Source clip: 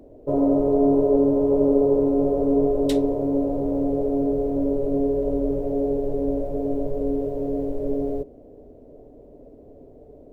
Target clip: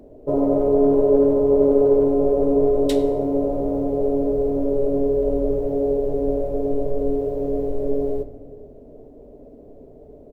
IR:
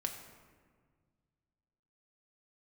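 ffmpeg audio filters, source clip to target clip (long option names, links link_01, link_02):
-filter_complex "[0:a]asplit=2[link_01][link_02];[link_02]adelay=100,highpass=300,lowpass=3400,asoftclip=type=hard:threshold=-15.5dB,volume=-18dB[link_03];[link_01][link_03]amix=inputs=2:normalize=0,asplit=2[link_04][link_05];[1:a]atrim=start_sample=2205[link_06];[link_05][link_06]afir=irnorm=-1:irlink=0,volume=-0.5dB[link_07];[link_04][link_07]amix=inputs=2:normalize=0,volume=-3.5dB"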